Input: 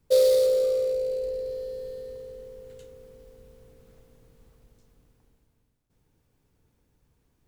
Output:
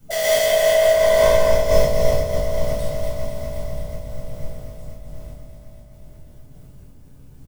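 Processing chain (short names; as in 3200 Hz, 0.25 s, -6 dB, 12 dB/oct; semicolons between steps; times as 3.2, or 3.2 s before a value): tone controls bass +5 dB, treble +7 dB; in parallel at -2.5 dB: compressor, threshold -32 dBFS, peak gain reduction 15.5 dB; on the sum: overloaded stage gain 25.5 dB; formant shift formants +4 st; doubler 22 ms -11 dB; echo with dull and thin repeats by turns 0.123 s, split 1900 Hz, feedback 88%, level -7 dB; shoebox room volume 940 m³, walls furnished, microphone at 7.2 m; noise-modulated level, depth 60%; gain +1.5 dB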